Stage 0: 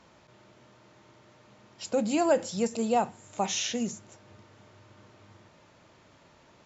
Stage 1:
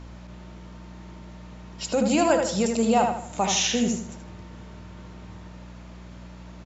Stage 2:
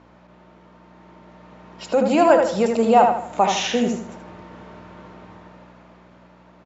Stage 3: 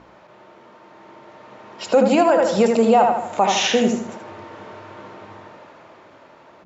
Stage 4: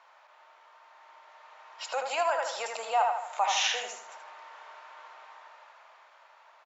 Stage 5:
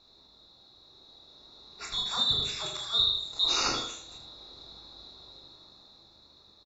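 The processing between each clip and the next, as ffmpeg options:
-filter_complex "[0:a]acrossover=split=1000[a][b];[a]alimiter=limit=-23dB:level=0:latency=1[c];[c][b]amix=inputs=2:normalize=0,aeval=exprs='val(0)+0.00447*(sin(2*PI*60*n/s)+sin(2*PI*2*60*n/s)/2+sin(2*PI*3*60*n/s)/3+sin(2*PI*4*60*n/s)/4+sin(2*PI*5*60*n/s)/5)':c=same,asplit=2[d][e];[e]adelay=78,lowpass=f=4.4k:p=1,volume=-4.5dB,asplit=2[f][g];[g]adelay=78,lowpass=f=4.4k:p=1,volume=0.38,asplit=2[h][i];[i]adelay=78,lowpass=f=4.4k:p=1,volume=0.38,asplit=2[j][k];[k]adelay=78,lowpass=f=4.4k:p=1,volume=0.38,asplit=2[l][m];[m]adelay=78,lowpass=f=4.4k:p=1,volume=0.38[n];[d][f][h][j][l][n]amix=inputs=6:normalize=0,volume=6.5dB"
-af "dynaudnorm=f=240:g=13:m=11.5dB,bandpass=f=770:t=q:w=0.56:csg=0"
-af "bandreject=f=60:t=h:w=6,bandreject=f=120:t=h:w=6,bandreject=f=180:t=h:w=6,bandreject=f=240:t=h:w=6,bandreject=f=300:t=h:w=6,alimiter=limit=-11dB:level=0:latency=1:release=245,volume=5dB"
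-af "highpass=f=770:w=0.5412,highpass=f=770:w=1.3066,volume=-6.5dB"
-filter_complex "[0:a]afftfilt=real='real(if(lt(b,272),68*(eq(floor(b/68),0)*1+eq(floor(b/68),1)*3+eq(floor(b/68),2)*0+eq(floor(b/68),3)*2)+mod(b,68),b),0)':imag='imag(if(lt(b,272),68*(eq(floor(b/68),0)*1+eq(floor(b/68),1)*3+eq(floor(b/68),2)*0+eq(floor(b/68),3)*2)+mod(b,68),b),0)':win_size=2048:overlap=0.75,asplit=2[a][b];[b]aecho=0:1:24|39:0.531|0.501[c];[a][c]amix=inputs=2:normalize=0,volume=-2dB"

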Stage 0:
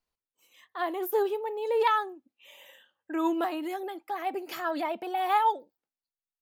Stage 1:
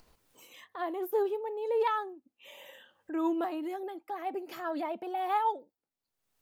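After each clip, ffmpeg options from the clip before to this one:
-af "tiltshelf=f=970:g=4,acompressor=mode=upward:threshold=-36dB:ratio=2.5,volume=-5dB"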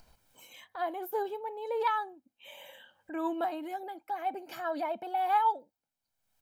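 -af "aecho=1:1:1.3:0.52"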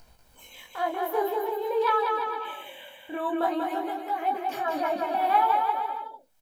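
-filter_complex "[0:a]flanger=delay=17:depth=6.9:speed=0.5,asplit=2[a][b];[b]aecho=0:1:190|342|463.6|560.9|638.7:0.631|0.398|0.251|0.158|0.1[c];[a][c]amix=inputs=2:normalize=0,volume=8dB"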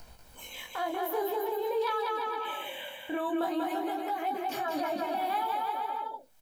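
-filter_complex "[0:a]acrossover=split=290|3000[a][b][c];[b]acompressor=threshold=-35dB:ratio=2.5[d];[a][d][c]amix=inputs=3:normalize=0,asplit=2[e][f];[f]alimiter=level_in=8.5dB:limit=-24dB:level=0:latency=1,volume=-8.5dB,volume=1dB[g];[e][g]amix=inputs=2:normalize=0,volume=-2dB"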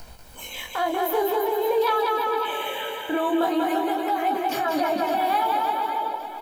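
-af "aecho=1:1:559|1118|1677|2236|2795:0.282|0.135|0.0649|0.0312|0.015,volume=8dB"

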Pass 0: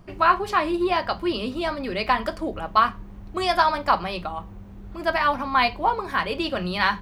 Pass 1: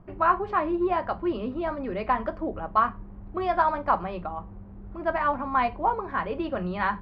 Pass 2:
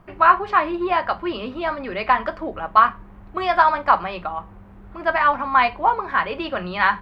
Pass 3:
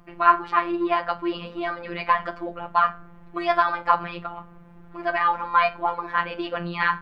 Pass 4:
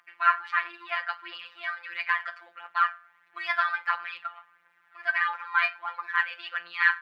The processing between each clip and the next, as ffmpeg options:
-af "lowpass=1.4k,volume=-2dB"
-af "tiltshelf=f=890:g=-8,volume=6.5dB"
-af "bandreject=f=225.5:t=h:w=4,bandreject=f=451:t=h:w=4,bandreject=f=676.5:t=h:w=4,bandreject=f=902:t=h:w=4,bandreject=f=1.1275k:t=h:w=4,bandreject=f=1.353k:t=h:w=4,bandreject=f=1.5785k:t=h:w=4,bandreject=f=1.804k:t=h:w=4,afftfilt=real='hypot(re,im)*cos(PI*b)':imag='0':win_size=1024:overlap=0.75"
-af "highpass=f=1.7k:t=q:w=2.4,aphaser=in_gain=1:out_gain=1:delay=1.8:decay=0.37:speed=1.5:type=triangular,volume=-5dB"

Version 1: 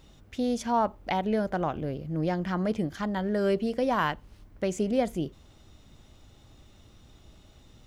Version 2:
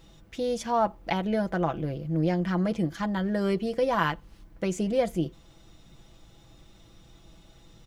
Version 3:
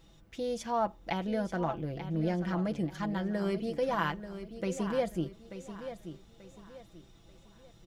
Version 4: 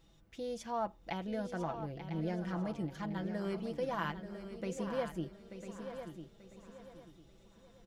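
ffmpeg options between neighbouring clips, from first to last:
-af "aecho=1:1:6:0.58"
-af "aecho=1:1:886|1772|2658|3544:0.282|0.0958|0.0326|0.0111,volume=-5.5dB"
-af "aecho=1:1:999|1998|2997:0.316|0.0759|0.0182,volume=-6dB"

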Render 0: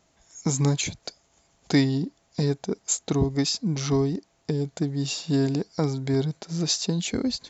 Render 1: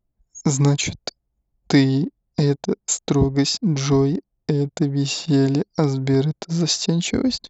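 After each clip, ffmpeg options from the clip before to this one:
-filter_complex "[0:a]anlmdn=0.158,asplit=2[a][b];[b]acompressor=threshold=-31dB:ratio=6,volume=-2.5dB[c];[a][c]amix=inputs=2:normalize=0,highshelf=f=5.5k:g=-4.5,volume=4dB"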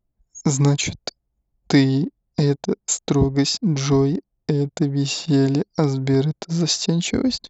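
-af anull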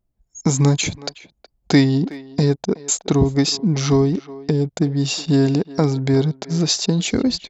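-filter_complex "[0:a]asplit=2[a][b];[b]adelay=370,highpass=300,lowpass=3.4k,asoftclip=type=hard:threshold=-11.5dB,volume=-16dB[c];[a][c]amix=inputs=2:normalize=0,volume=1.5dB"

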